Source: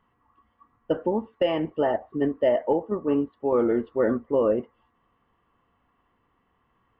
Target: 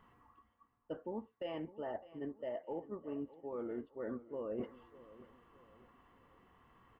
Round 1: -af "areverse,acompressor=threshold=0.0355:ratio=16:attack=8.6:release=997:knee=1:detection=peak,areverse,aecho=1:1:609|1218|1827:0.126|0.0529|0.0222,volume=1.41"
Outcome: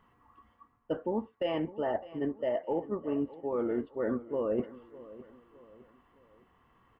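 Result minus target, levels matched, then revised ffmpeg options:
compression: peak gain reduction -10.5 dB
-af "areverse,acompressor=threshold=0.01:ratio=16:attack=8.6:release=997:knee=1:detection=peak,areverse,aecho=1:1:609|1218|1827:0.126|0.0529|0.0222,volume=1.41"

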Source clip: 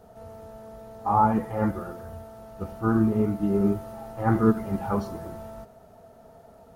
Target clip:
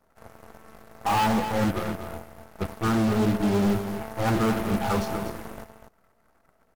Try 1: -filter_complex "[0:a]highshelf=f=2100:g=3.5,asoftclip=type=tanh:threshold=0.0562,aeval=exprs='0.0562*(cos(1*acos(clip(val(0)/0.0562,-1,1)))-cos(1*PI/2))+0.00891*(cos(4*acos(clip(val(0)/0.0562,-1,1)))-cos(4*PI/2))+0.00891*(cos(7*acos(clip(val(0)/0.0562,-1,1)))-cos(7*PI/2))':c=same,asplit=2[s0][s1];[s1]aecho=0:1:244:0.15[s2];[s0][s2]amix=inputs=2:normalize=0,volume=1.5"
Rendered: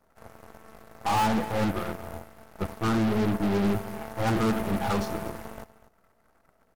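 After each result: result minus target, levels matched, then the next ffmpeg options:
echo-to-direct -7 dB; saturation: distortion +6 dB
-filter_complex "[0:a]highshelf=f=2100:g=3.5,asoftclip=type=tanh:threshold=0.0562,aeval=exprs='0.0562*(cos(1*acos(clip(val(0)/0.0562,-1,1)))-cos(1*PI/2))+0.00891*(cos(4*acos(clip(val(0)/0.0562,-1,1)))-cos(4*PI/2))+0.00891*(cos(7*acos(clip(val(0)/0.0562,-1,1)))-cos(7*PI/2))':c=same,asplit=2[s0][s1];[s1]aecho=0:1:244:0.335[s2];[s0][s2]amix=inputs=2:normalize=0,volume=1.5"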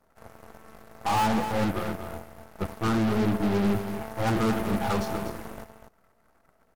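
saturation: distortion +6 dB
-filter_complex "[0:a]highshelf=f=2100:g=3.5,asoftclip=type=tanh:threshold=0.133,aeval=exprs='0.0562*(cos(1*acos(clip(val(0)/0.0562,-1,1)))-cos(1*PI/2))+0.00891*(cos(4*acos(clip(val(0)/0.0562,-1,1)))-cos(4*PI/2))+0.00891*(cos(7*acos(clip(val(0)/0.0562,-1,1)))-cos(7*PI/2))':c=same,asplit=2[s0][s1];[s1]aecho=0:1:244:0.335[s2];[s0][s2]amix=inputs=2:normalize=0,volume=1.5"

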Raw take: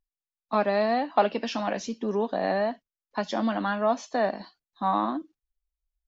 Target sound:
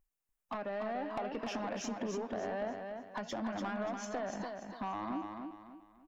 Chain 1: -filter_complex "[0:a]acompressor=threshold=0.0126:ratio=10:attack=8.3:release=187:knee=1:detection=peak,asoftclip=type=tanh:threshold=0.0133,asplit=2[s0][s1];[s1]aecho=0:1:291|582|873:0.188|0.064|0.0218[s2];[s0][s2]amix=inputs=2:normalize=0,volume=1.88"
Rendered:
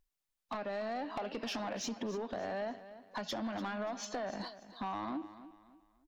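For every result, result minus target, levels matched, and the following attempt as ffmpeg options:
echo-to-direct -9 dB; 4 kHz band +5.5 dB
-filter_complex "[0:a]acompressor=threshold=0.0126:ratio=10:attack=8.3:release=187:knee=1:detection=peak,asoftclip=type=tanh:threshold=0.0133,asplit=2[s0][s1];[s1]aecho=0:1:291|582|873|1164:0.531|0.181|0.0614|0.0209[s2];[s0][s2]amix=inputs=2:normalize=0,volume=1.88"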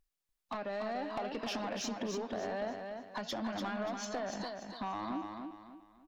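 4 kHz band +5.5 dB
-filter_complex "[0:a]acompressor=threshold=0.0126:ratio=10:attack=8.3:release=187:knee=1:detection=peak,equalizer=f=4100:w=1.8:g=-12.5,asoftclip=type=tanh:threshold=0.0133,asplit=2[s0][s1];[s1]aecho=0:1:291|582|873|1164:0.531|0.181|0.0614|0.0209[s2];[s0][s2]amix=inputs=2:normalize=0,volume=1.88"

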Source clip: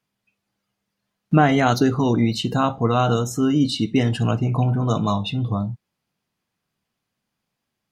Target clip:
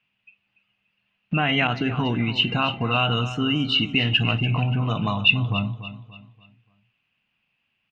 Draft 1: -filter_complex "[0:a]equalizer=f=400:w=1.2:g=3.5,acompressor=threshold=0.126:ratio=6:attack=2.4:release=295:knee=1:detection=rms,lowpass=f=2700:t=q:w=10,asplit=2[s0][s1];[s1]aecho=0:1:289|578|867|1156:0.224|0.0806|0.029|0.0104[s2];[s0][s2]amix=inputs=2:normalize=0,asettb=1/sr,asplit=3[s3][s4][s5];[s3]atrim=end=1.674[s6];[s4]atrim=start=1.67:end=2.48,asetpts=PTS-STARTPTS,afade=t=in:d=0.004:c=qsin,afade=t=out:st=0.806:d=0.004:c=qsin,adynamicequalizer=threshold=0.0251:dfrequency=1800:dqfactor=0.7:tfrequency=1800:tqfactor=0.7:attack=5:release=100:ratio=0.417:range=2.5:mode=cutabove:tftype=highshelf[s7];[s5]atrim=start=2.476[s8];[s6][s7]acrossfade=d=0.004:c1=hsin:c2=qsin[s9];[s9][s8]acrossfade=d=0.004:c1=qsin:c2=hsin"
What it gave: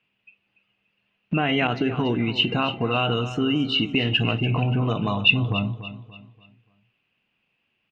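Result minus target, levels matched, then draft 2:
500 Hz band +4.5 dB
-filter_complex "[0:a]equalizer=f=400:w=1.2:g=-5.5,acompressor=threshold=0.126:ratio=6:attack=2.4:release=295:knee=1:detection=rms,lowpass=f=2700:t=q:w=10,asplit=2[s0][s1];[s1]aecho=0:1:289|578|867|1156:0.224|0.0806|0.029|0.0104[s2];[s0][s2]amix=inputs=2:normalize=0,asettb=1/sr,asplit=3[s3][s4][s5];[s3]atrim=end=1.674[s6];[s4]atrim=start=1.67:end=2.48,asetpts=PTS-STARTPTS,afade=t=in:d=0.004:c=qsin,afade=t=out:st=0.806:d=0.004:c=qsin,adynamicequalizer=threshold=0.0251:dfrequency=1800:dqfactor=0.7:tfrequency=1800:tqfactor=0.7:attack=5:release=100:ratio=0.417:range=2.5:mode=cutabove:tftype=highshelf[s7];[s5]atrim=start=2.476[s8];[s6][s7]acrossfade=d=0.004:c1=hsin:c2=qsin[s9];[s9][s8]acrossfade=d=0.004:c1=qsin:c2=hsin"

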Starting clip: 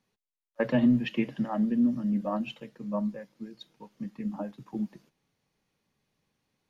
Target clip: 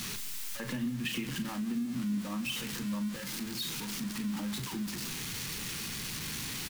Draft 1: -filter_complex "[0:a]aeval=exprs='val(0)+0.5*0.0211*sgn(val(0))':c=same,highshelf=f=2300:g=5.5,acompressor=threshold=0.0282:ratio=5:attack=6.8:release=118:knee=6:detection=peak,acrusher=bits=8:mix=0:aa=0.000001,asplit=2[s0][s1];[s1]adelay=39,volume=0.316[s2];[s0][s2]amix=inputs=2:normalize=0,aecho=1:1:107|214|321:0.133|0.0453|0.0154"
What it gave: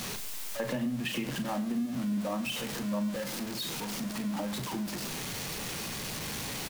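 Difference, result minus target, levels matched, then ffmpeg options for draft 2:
500 Hz band +8.5 dB; echo 74 ms early
-filter_complex "[0:a]aeval=exprs='val(0)+0.5*0.0211*sgn(val(0))':c=same,highshelf=f=2300:g=5.5,acompressor=threshold=0.0282:ratio=5:attack=6.8:release=118:knee=6:detection=peak,equalizer=f=630:w=1.5:g=-15,acrusher=bits=8:mix=0:aa=0.000001,asplit=2[s0][s1];[s1]adelay=39,volume=0.316[s2];[s0][s2]amix=inputs=2:normalize=0,aecho=1:1:181|362|543:0.133|0.0453|0.0154"

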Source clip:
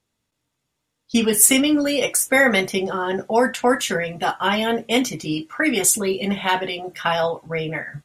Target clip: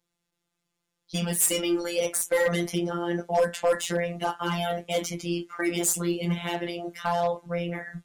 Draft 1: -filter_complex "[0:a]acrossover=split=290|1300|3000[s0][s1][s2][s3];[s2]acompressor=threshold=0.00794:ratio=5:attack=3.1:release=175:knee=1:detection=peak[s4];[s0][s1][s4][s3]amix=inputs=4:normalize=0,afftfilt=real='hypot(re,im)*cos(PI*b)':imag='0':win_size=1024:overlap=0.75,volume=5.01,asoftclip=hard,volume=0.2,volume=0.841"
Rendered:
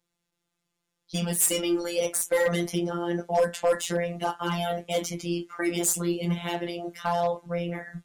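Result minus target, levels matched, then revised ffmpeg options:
compression: peak gain reduction +5.5 dB
-filter_complex "[0:a]acrossover=split=290|1300|3000[s0][s1][s2][s3];[s2]acompressor=threshold=0.0178:ratio=5:attack=3.1:release=175:knee=1:detection=peak[s4];[s0][s1][s4][s3]amix=inputs=4:normalize=0,afftfilt=real='hypot(re,im)*cos(PI*b)':imag='0':win_size=1024:overlap=0.75,volume=5.01,asoftclip=hard,volume=0.2,volume=0.841"

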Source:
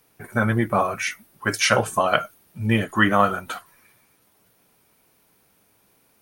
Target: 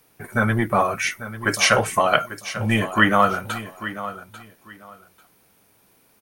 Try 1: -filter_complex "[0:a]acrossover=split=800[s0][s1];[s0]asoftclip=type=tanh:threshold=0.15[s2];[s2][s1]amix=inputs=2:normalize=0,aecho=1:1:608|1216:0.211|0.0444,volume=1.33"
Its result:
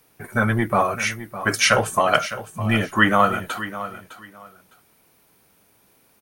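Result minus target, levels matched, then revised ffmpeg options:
echo 235 ms early
-filter_complex "[0:a]acrossover=split=800[s0][s1];[s0]asoftclip=type=tanh:threshold=0.15[s2];[s2][s1]amix=inputs=2:normalize=0,aecho=1:1:843|1686:0.211|0.0444,volume=1.33"

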